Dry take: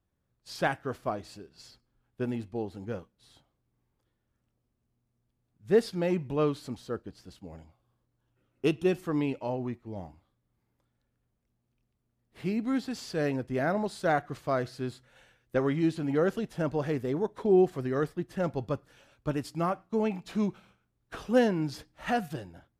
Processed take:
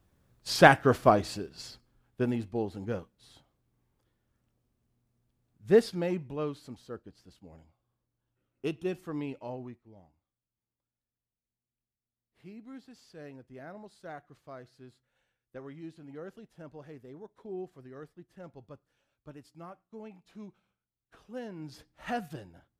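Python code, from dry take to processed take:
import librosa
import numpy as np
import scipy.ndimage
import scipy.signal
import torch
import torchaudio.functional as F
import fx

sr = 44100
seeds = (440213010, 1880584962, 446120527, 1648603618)

y = fx.gain(x, sr, db=fx.line((1.18, 11.0), (2.37, 2.0), (5.74, 2.0), (6.36, -7.0), (9.57, -7.0), (10.01, -17.5), (21.41, -17.5), (21.89, -5.0)))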